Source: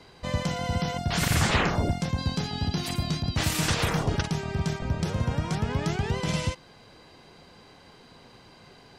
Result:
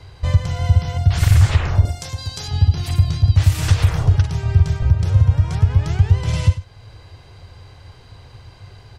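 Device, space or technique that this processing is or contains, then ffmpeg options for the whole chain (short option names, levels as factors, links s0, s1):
car stereo with a boomy subwoofer: -filter_complex "[0:a]lowshelf=f=140:t=q:w=3:g=12.5,alimiter=limit=0.422:level=0:latency=1:release=410,asettb=1/sr,asplit=3[s0][s1][s2];[s0]atrim=end=1.854[s3];[s1]atrim=start=1.85:end=2.48,asetpts=PTS-STARTPTS,afade=t=in:d=0.004:c=qsin,afade=t=out:st=0.626:d=0.004:c=qsin,bass=f=250:g=-13,treble=f=4000:g=12[s4];[s2]atrim=start=2.476[s5];[s3][s4]acrossfade=d=0.004:c1=hsin:c2=qsin[s6];[s6][s5]acrossfade=d=0.004:c1=qsin:c2=hsin,aecho=1:1:99:0.188,volume=1.5"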